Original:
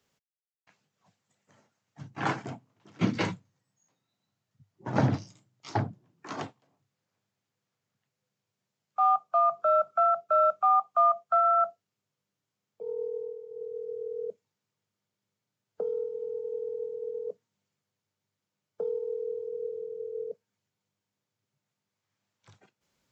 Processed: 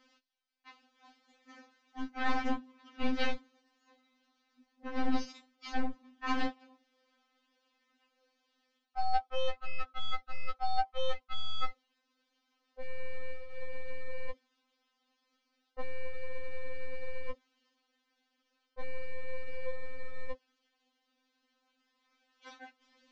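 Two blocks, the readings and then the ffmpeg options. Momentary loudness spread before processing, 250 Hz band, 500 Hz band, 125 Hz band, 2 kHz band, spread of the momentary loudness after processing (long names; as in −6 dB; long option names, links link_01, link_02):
17 LU, −3.0 dB, −12.0 dB, −14.5 dB, +1.5 dB, 20 LU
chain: -af "areverse,acompressor=threshold=-36dB:ratio=8,areverse,aeval=exprs='clip(val(0),-1,0.00422)':channel_layout=same,lowpass=frequency=4800:width=0.5412,lowpass=frequency=4800:width=1.3066,equalizer=frequency=410:width_type=o:width=1.6:gain=-4,afftfilt=real='re*3.46*eq(mod(b,12),0)':imag='im*3.46*eq(mod(b,12),0)':win_size=2048:overlap=0.75,volume=14.5dB"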